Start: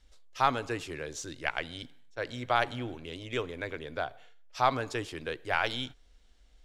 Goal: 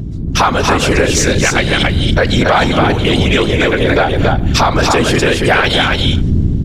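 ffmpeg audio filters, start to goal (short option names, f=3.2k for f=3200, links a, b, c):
-af "agate=range=-12dB:threshold=-52dB:ratio=16:detection=peak,aeval=exprs='val(0)+0.00631*(sin(2*PI*60*n/s)+sin(2*PI*2*60*n/s)/2+sin(2*PI*3*60*n/s)/3+sin(2*PI*4*60*n/s)/4+sin(2*PI*5*60*n/s)/5)':c=same,acompressor=threshold=-42dB:ratio=4,afftfilt=real='hypot(re,im)*cos(2*PI*random(0))':imag='hypot(re,im)*sin(2*PI*random(1))':win_size=512:overlap=0.75,asoftclip=type=tanh:threshold=-36.5dB,dynaudnorm=f=130:g=5:m=9.5dB,aecho=1:1:234|280:0.168|0.668,alimiter=level_in=31dB:limit=-1dB:release=50:level=0:latency=1,volume=-1dB"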